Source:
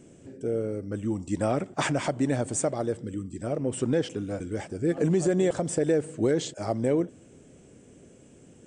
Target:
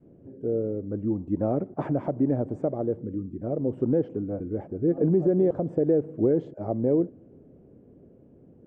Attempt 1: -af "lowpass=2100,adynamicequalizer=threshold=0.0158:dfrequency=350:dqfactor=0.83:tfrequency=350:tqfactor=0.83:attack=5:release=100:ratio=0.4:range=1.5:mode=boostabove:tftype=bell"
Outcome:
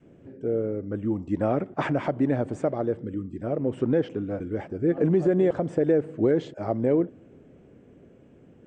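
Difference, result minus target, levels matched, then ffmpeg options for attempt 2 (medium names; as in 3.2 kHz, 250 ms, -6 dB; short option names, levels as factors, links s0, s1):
2 kHz band +14.0 dB
-af "lowpass=670,adynamicequalizer=threshold=0.0158:dfrequency=350:dqfactor=0.83:tfrequency=350:tqfactor=0.83:attack=5:release=100:ratio=0.4:range=1.5:mode=boostabove:tftype=bell"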